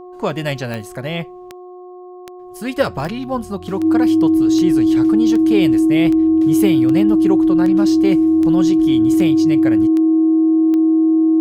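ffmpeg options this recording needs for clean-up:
-af "adeclick=t=4,bandreject=f=361.7:t=h:w=4,bandreject=f=723.4:t=h:w=4,bandreject=f=1.0851k:t=h:w=4,bandreject=f=320:w=30"

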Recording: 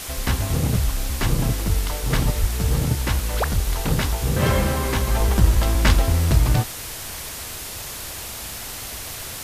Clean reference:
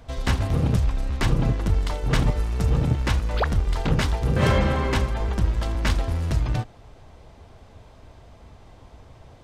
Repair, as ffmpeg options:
-filter_complex "[0:a]adeclick=t=4,asplit=3[a][b][c];[a]afade=t=out:st=2.4:d=0.02[d];[b]highpass=f=140:w=0.5412,highpass=f=140:w=1.3066,afade=t=in:st=2.4:d=0.02,afade=t=out:st=2.52:d=0.02[e];[c]afade=t=in:st=2.52:d=0.02[f];[d][e][f]amix=inputs=3:normalize=0,asplit=3[g][h][i];[g]afade=t=out:st=5.52:d=0.02[j];[h]highpass=f=140:w=0.5412,highpass=f=140:w=1.3066,afade=t=in:st=5.52:d=0.02,afade=t=out:st=5.64:d=0.02[k];[i]afade=t=in:st=5.64:d=0.02[l];[j][k][l]amix=inputs=3:normalize=0,afwtdn=0.025,asetnsamples=n=441:p=0,asendcmd='5.07 volume volume -6dB',volume=0dB"

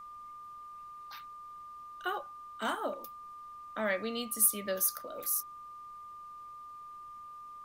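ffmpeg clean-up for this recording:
-af "bandreject=f=1.2k:w=30,agate=range=-21dB:threshold=-40dB"

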